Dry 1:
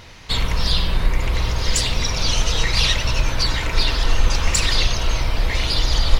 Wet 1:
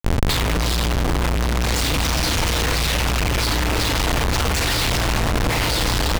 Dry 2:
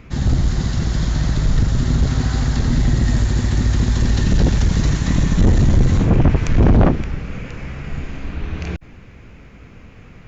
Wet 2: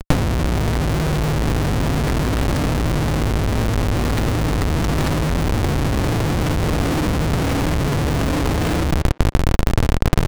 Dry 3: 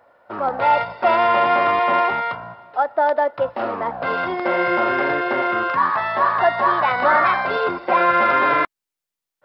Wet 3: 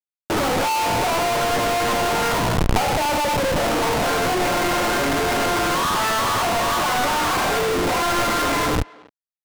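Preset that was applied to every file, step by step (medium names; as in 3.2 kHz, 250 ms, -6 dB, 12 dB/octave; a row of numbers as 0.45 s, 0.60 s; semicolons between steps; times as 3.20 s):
high-pass 53 Hz 12 dB/octave; peak limiter -13 dBFS; compression 4:1, threshold -24 dBFS; FDN reverb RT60 0.76 s, low-frequency decay 1.25×, high-frequency decay 0.7×, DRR -1.5 dB; Schmitt trigger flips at -31.5 dBFS; power-law waveshaper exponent 3; speakerphone echo 270 ms, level -23 dB; loudspeaker Doppler distortion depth 0.53 ms; normalise loudness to -20 LUFS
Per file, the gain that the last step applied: +13.0 dB, +15.0 dB, +14.0 dB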